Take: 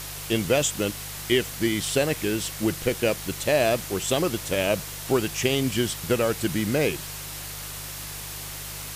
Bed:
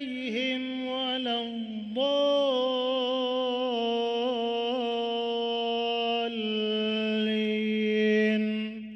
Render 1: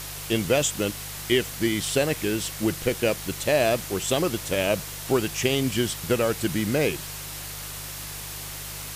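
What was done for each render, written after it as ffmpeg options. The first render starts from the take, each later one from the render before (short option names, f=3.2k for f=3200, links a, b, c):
-af anull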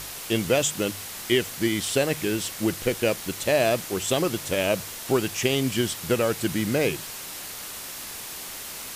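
-af "bandreject=f=50:t=h:w=4,bandreject=f=100:t=h:w=4,bandreject=f=150:t=h:w=4"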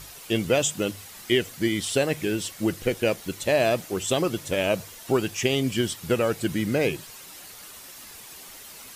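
-af "afftdn=nr=9:nf=-37"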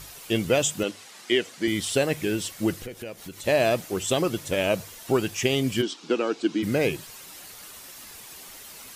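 -filter_complex "[0:a]asettb=1/sr,asplit=3[a][b][c];[a]atrim=end=0.834[d];[b]atrim=start=0.83:end=1.68,asetpts=PTS-STARTPTS,afade=t=in:d=0.004:c=qsin,afade=t=out:st=0.846:d=0.004:c=qsin,highpass=250,lowpass=7.8k[e];[c]atrim=start=1.676[f];[d][e]acrossfade=d=0.004:c1=hsin:c2=qsin[g];[g][f]acrossfade=d=0.004:c1=qsin:c2=hsin,asplit=3[h][i][j];[h]afade=t=out:st=2.84:d=0.02[k];[i]acompressor=threshold=-37dB:ratio=3:attack=3.2:release=140:knee=1:detection=peak,afade=t=in:st=2.84:d=0.02,afade=t=out:st=3.43:d=0.02[l];[j]afade=t=in:st=3.43:d=0.02[m];[k][l][m]amix=inputs=3:normalize=0,asplit=3[n][o][p];[n]afade=t=out:st=5.81:d=0.02[q];[o]highpass=f=250:w=0.5412,highpass=f=250:w=1.3066,equalizer=f=300:t=q:w=4:g=8,equalizer=f=580:t=q:w=4:g=-7,equalizer=f=1.9k:t=q:w=4:g=-9,lowpass=f=6.1k:w=0.5412,lowpass=f=6.1k:w=1.3066,afade=t=in:st=5.81:d=0.02,afade=t=out:st=6.62:d=0.02[r];[p]afade=t=in:st=6.62:d=0.02[s];[q][r][s]amix=inputs=3:normalize=0"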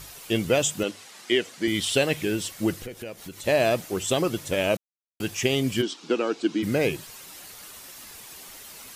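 -filter_complex "[0:a]asettb=1/sr,asplit=3[a][b][c];[a]atrim=end=1.744[d];[b]atrim=start=1.74:end=2.23,asetpts=PTS-STARTPTS,afade=t=in:d=0.004:c=qsin,afade=t=out:st=0.486:d=0.004:c=qsin,equalizer=f=3.1k:w=1.7:g=6.5[e];[c]atrim=start=2.226[f];[d][e]acrossfade=d=0.004:c1=hsin:c2=qsin[g];[g][f]acrossfade=d=0.004:c1=qsin:c2=hsin,asplit=3[h][i][j];[h]atrim=end=4.77,asetpts=PTS-STARTPTS,afade=t=out:st=4.766:d=0.004:c=hsin[k];[i]atrim=start=4.77:end=5.2,asetpts=PTS-STARTPTS,volume=0[l];[j]atrim=start=5.2,asetpts=PTS-STARTPTS,afade=t=in:d=0.004:c=hsin[m];[k][l][m]concat=n=3:v=0:a=1"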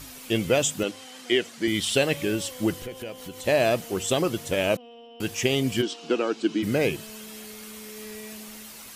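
-filter_complex "[1:a]volume=-17.5dB[a];[0:a][a]amix=inputs=2:normalize=0"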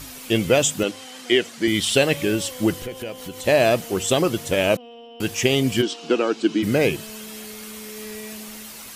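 -af "volume=4.5dB"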